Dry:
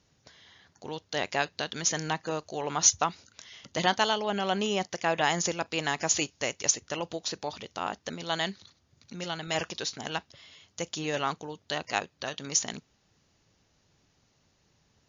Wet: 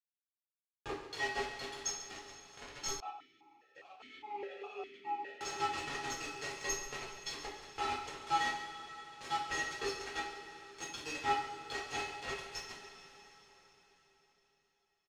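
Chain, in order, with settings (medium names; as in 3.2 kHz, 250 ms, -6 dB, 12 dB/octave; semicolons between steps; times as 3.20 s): one-sided wavefolder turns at -17.5 dBFS; comb 6.9 ms, depth 91%; compression 6:1, threshold -31 dBFS, peak gain reduction 15.5 dB; inharmonic resonator 390 Hz, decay 0.26 s, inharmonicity 0.03; small samples zeroed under -46.5 dBFS; distance through air 97 m; delay 137 ms -13 dB; two-slope reverb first 0.42 s, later 4.5 s, from -17 dB, DRR -6 dB; 3.00–5.41 s: stepped vowel filter 4.9 Hz; trim +10 dB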